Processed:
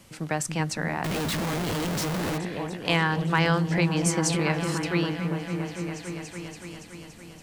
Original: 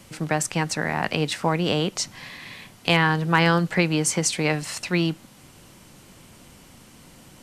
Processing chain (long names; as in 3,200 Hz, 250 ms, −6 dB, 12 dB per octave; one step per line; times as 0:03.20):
echo whose low-pass opens from repeat to repeat 284 ms, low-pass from 200 Hz, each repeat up 1 octave, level 0 dB
0:01.04–0:02.38: comparator with hysteresis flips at −36 dBFS
level −4.5 dB